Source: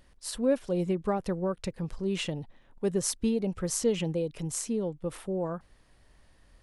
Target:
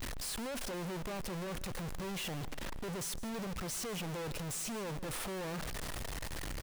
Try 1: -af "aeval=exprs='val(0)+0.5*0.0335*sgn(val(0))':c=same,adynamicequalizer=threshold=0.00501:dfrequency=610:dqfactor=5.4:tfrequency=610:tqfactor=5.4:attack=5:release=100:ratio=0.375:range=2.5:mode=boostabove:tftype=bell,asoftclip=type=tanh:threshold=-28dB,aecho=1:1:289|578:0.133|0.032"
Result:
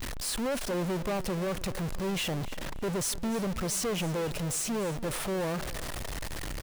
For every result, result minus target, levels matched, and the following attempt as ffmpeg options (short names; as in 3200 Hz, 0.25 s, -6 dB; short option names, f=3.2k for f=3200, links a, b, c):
echo 0.129 s late; soft clip: distortion -5 dB
-af "aeval=exprs='val(0)+0.5*0.0335*sgn(val(0))':c=same,adynamicequalizer=threshold=0.00501:dfrequency=610:dqfactor=5.4:tfrequency=610:tqfactor=5.4:attack=5:release=100:ratio=0.375:range=2.5:mode=boostabove:tftype=bell,asoftclip=type=tanh:threshold=-28dB,aecho=1:1:160|320:0.133|0.032"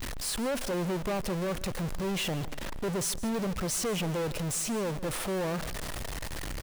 soft clip: distortion -5 dB
-af "aeval=exprs='val(0)+0.5*0.0335*sgn(val(0))':c=same,adynamicequalizer=threshold=0.00501:dfrequency=610:dqfactor=5.4:tfrequency=610:tqfactor=5.4:attack=5:release=100:ratio=0.375:range=2.5:mode=boostabove:tftype=bell,asoftclip=type=tanh:threshold=-39dB,aecho=1:1:160|320:0.133|0.032"